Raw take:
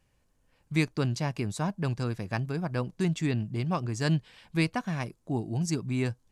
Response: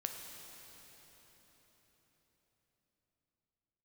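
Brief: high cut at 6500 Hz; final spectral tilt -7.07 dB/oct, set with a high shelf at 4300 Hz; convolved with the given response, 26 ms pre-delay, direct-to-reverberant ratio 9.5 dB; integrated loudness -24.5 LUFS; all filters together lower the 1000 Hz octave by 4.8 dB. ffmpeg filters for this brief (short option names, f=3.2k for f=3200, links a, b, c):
-filter_complex "[0:a]lowpass=6.5k,equalizer=f=1k:t=o:g=-6,highshelf=f=4.3k:g=-6,asplit=2[a][b];[1:a]atrim=start_sample=2205,adelay=26[c];[b][c]afir=irnorm=-1:irlink=0,volume=-9.5dB[d];[a][d]amix=inputs=2:normalize=0,volume=6dB"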